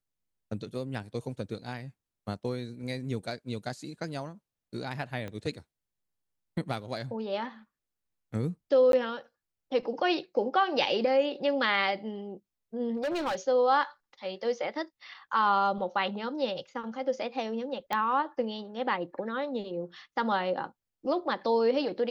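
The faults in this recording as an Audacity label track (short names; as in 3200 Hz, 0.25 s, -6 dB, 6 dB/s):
5.280000	5.280000	pop -26 dBFS
8.920000	8.930000	gap 12 ms
12.960000	13.350000	clipped -27.5 dBFS
17.930000	17.930000	pop -16 dBFS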